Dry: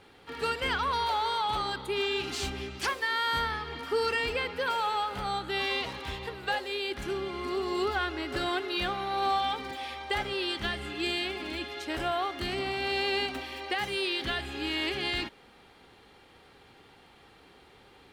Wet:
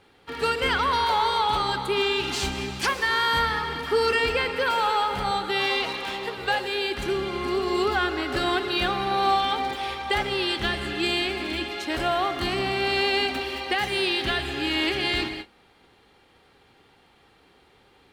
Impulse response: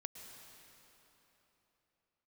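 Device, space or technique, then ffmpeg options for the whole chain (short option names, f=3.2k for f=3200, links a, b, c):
keyed gated reverb: -filter_complex "[0:a]asettb=1/sr,asplit=3[a][b][c];[a]atrim=end=5.314[d];[b]atrim=start=5.31:end=6.38,asetpts=PTS-STARTPTS,afade=t=in:d=0.004:c=qsin,afade=t=out:st=1.066:d=0.004:c=qsin,highpass=230[e];[c]atrim=start=6.376[f];[d][e]acrossfade=d=0.004:c1=hsin:c2=qsin[g];[g][f]acrossfade=d=0.004:c1=qsin:c2=hsin,asplit=3[h][i][j];[1:a]atrim=start_sample=2205[k];[i][k]afir=irnorm=-1:irlink=0[l];[j]apad=whole_len=799419[m];[l][m]sidechaingate=range=-33dB:threshold=-51dB:ratio=16:detection=peak,volume=8dB[n];[h][n]amix=inputs=2:normalize=0,volume=-2dB"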